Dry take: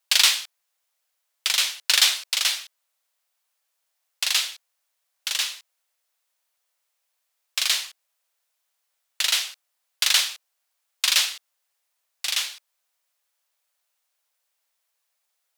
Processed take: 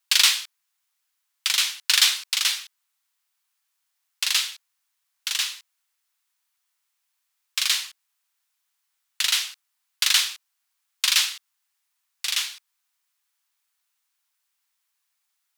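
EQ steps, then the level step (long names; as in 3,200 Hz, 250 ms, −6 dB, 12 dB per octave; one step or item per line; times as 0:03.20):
high-pass filter 890 Hz 24 dB per octave
0.0 dB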